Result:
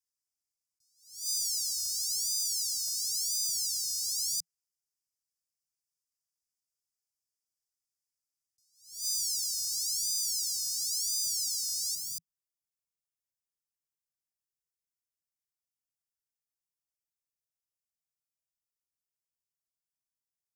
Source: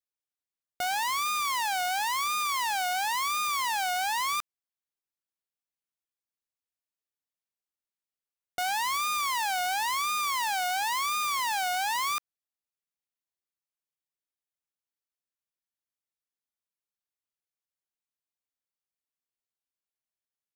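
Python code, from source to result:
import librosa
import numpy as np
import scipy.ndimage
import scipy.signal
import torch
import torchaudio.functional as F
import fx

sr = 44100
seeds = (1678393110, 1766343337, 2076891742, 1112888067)

y = scipy.signal.sosfilt(scipy.signal.cheby1(5, 1.0, [170.0, 4900.0], 'bandstop', fs=sr, output='sos'), x)
y = fx.peak_eq(y, sr, hz=fx.steps((0.0, 4400.0), (11.95, 770.0)), db=9.0, octaves=2.8)
y = fx.attack_slew(y, sr, db_per_s=120.0)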